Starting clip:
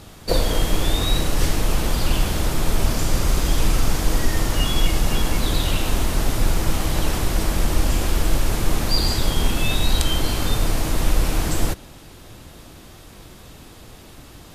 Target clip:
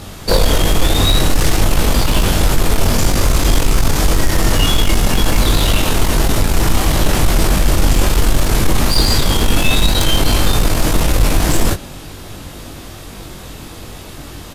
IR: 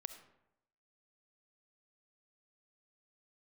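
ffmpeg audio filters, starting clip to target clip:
-filter_complex "[0:a]asplit=2[a][b];[b]aeval=exprs='0.891*sin(PI/2*5.01*val(0)/0.891)':c=same,volume=-10.5dB[c];[a][c]amix=inputs=2:normalize=0,asplit=2[d][e];[e]adelay=21,volume=-5dB[f];[d][f]amix=inputs=2:normalize=0,volume=-1dB"

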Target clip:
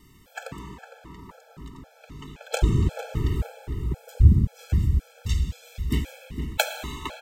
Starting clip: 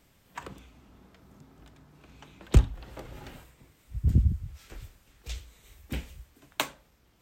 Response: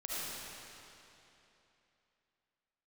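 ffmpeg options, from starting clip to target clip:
-filter_complex "[0:a]asplit=2[a][b];[b]adelay=458,lowpass=f=1.6k:p=1,volume=-8dB,asplit=2[c][d];[d]adelay=458,lowpass=f=1.6k:p=1,volume=0.54,asplit=2[e][f];[f]adelay=458,lowpass=f=1.6k:p=1,volume=0.54,asplit=2[g][h];[h]adelay=458,lowpass=f=1.6k:p=1,volume=0.54,asplit=2[i][j];[j]adelay=458,lowpass=f=1.6k:p=1,volume=0.54,asplit=2[k][l];[l]adelay=458,lowpass=f=1.6k:p=1,volume=0.54[m];[a][c][e][g][i][k][m]amix=inputs=7:normalize=0,asplit=2[n][o];[1:a]atrim=start_sample=2205,lowshelf=f=490:g=6[p];[o][p]afir=irnorm=-1:irlink=0,volume=-9.5dB[q];[n][q]amix=inputs=2:normalize=0,afftfilt=real='re*gt(sin(2*PI*1.9*pts/sr)*(1-2*mod(floor(b*sr/1024/440),2)),0)':imag='im*gt(sin(2*PI*1.9*pts/sr)*(1-2*mod(floor(b*sr/1024/440),2)),0)':win_size=1024:overlap=0.75,volume=8dB"

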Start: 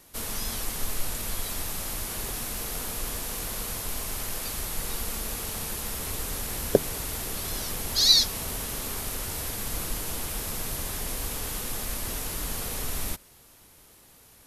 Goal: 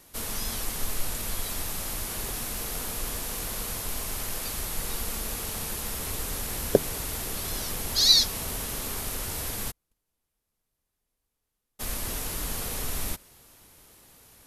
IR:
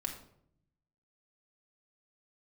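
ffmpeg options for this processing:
-filter_complex "[0:a]asplit=3[a][b][c];[a]afade=t=out:st=9.7:d=0.02[d];[b]agate=range=-50dB:threshold=-21dB:ratio=16:detection=peak,afade=t=in:st=9.7:d=0.02,afade=t=out:st=11.79:d=0.02[e];[c]afade=t=in:st=11.79:d=0.02[f];[d][e][f]amix=inputs=3:normalize=0"

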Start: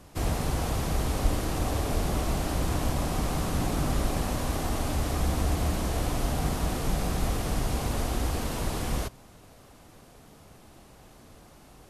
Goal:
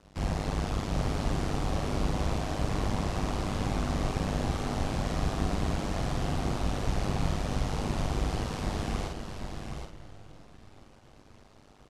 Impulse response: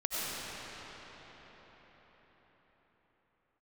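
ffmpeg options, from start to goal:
-filter_complex "[0:a]asplit=2[a][b];[1:a]atrim=start_sample=2205,asetrate=52920,aresample=44100,adelay=109[c];[b][c]afir=irnorm=-1:irlink=0,volume=-19.5dB[d];[a][d]amix=inputs=2:normalize=0,tremolo=f=100:d=0.947,asplit=2[e][f];[f]adelay=49,volume=-4dB[g];[e][g]amix=inputs=2:normalize=0,aecho=1:1:775:0.473,aeval=exprs='sgn(val(0))*max(abs(val(0))-0.00112,0)':c=same,lowpass=6.2k"

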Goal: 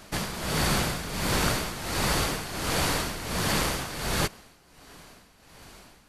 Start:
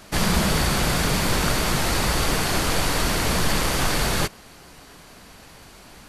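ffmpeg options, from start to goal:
-af "afftfilt=real='re*lt(hypot(re,im),0.794)':imag='im*lt(hypot(re,im),0.794)':win_size=1024:overlap=0.75,tremolo=f=1.4:d=0.72,volume=-2dB"

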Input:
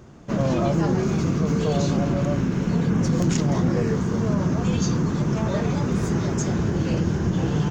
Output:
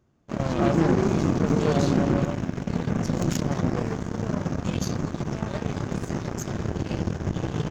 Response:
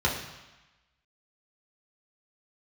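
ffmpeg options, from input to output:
-filter_complex "[0:a]asettb=1/sr,asplit=3[a][b][c];[a]atrim=end=0.594[d];[b]atrim=start=0.59:end=2.26,asetpts=PTS-STARTPTS,afade=t=in:d=0.004:c=qsin,afade=t=out:st=1.666:d=0.004:c=qsin,equalizer=f=330:w=0.92:g=6[e];[c]atrim=start=2.256[f];[d][e]acrossfade=d=0.004:c1=hsin:c2=qsin[g];[g][f]acrossfade=d=0.004:c1=qsin:c2=hsin,aeval=exprs='0.422*(cos(1*acos(clip(val(0)/0.422,-1,1)))-cos(1*PI/2))+0.0531*(cos(7*acos(clip(val(0)/0.422,-1,1)))-cos(7*PI/2))':c=same,asplit=2[h][i];[1:a]atrim=start_sample=2205[j];[i][j]afir=irnorm=-1:irlink=0,volume=-29dB[k];[h][k]amix=inputs=2:normalize=0,volume=-2.5dB"

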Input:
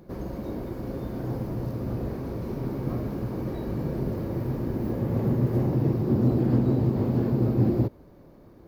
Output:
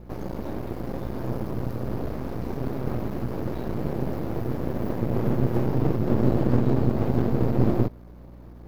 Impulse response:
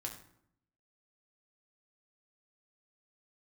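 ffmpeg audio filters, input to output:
-filter_complex "[0:a]asettb=1/sr,asplit=3[a][b][c];[a]atrim=end=3.784[d];[b]atrim=start=3.78:end=5.99,asetpts=PTS-STARTPTS,afade=t=in:d=0.004:c=qsin,afade=t=out:st=2.206:d=0.004:c=qsin,highpass=69[e];[c]atrim=start=5.986[f];[d][e]acrossfade=d=0.004:c1=hsin:c2=qsin[g];[g][f]acrossfade=d=0.004:c1=qsin:c2=hsin,aeval=exprs='max(val(0),0)':c=same,aeval=exprs='val(0)+0.00355*(sin(2*PI*60*n/s)+sin(2*PI*2*60*n/s)/2+sin(2*PI*3*60*n/s)/3+sin(2*PI*4*60*n/s)/4+sin(2*PI*5*60*n/s)/5)':c=same,volume=5dB"

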